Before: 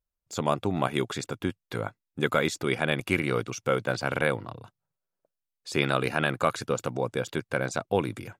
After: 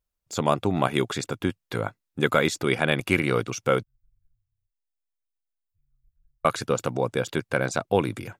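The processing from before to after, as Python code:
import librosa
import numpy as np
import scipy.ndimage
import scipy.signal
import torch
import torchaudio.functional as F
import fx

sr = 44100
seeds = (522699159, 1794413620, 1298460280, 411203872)

y = fx.cheby2_bandstop(x, sr, low_hz=210.0, high_hz=8800.0, order=4, stop_db=80, at=(3.83, 6.45))
y = y * 10.0 ** (3.5 / 20.0)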